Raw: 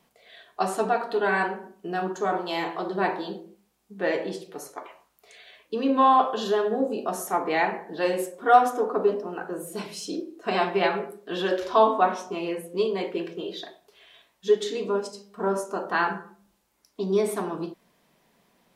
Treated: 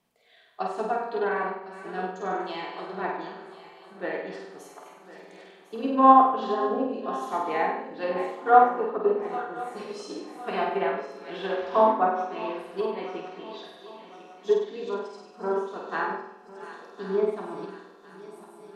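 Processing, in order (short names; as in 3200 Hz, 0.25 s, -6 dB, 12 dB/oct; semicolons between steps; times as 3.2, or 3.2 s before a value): regenerating reverse delay 0.527 s, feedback 70%, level -11.5 dB; treble ducked by the level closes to 1600 Hz, closed at -18.5 dBFS; on a send: flutter echo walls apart 8.4 m, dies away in 0.84 s; on the sum: upward expander 1.5:1, over -30 dBFS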